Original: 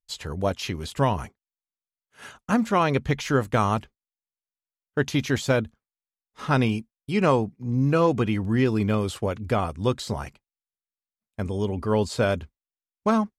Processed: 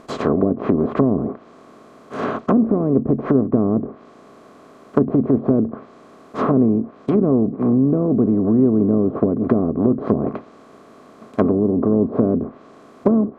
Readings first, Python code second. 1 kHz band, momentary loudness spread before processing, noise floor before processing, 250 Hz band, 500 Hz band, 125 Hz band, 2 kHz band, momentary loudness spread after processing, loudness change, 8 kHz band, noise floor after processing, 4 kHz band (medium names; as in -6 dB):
-1.5 dB, 11 LU, under -85 dBFS, +10.0 dB, +6.0 dB, +2.5 dB, no reading, 10 LU, +6.5 dB, under -15 dB, -46 dBFS, under -10 dB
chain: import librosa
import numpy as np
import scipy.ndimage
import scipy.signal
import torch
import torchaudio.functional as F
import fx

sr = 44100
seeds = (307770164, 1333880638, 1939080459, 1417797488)

y = fx.bin_compress(x, sr, power=0.4)
y = fx.small_body(y, sr, hz=(270.0, 400.0, 640.0, 1100.0), ring_ms=20, db=15)
y = fx.env_lowpass_down(y, sr, base_hz=340.0, full_db=-2.0)
y = y * 10.0 ** (-9.0 / 20.0)